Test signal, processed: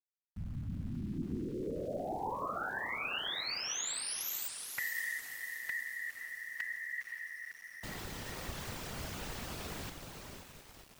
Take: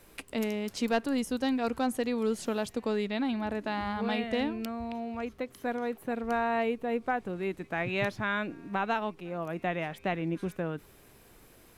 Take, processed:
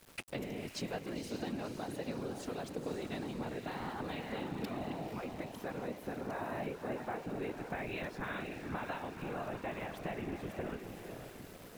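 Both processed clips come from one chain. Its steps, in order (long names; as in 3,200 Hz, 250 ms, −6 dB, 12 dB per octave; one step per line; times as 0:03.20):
parametric band 11,000 Hz −4.5 dB 0.77 octaves
downward compressor 8 to 1, threshold −39 dBFS
feedback delay with all-pass diffusion 517 ms, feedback 52%, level −6 dB
random phases in short frames
centre clipping without the shift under −54 dBFS
level +1 dB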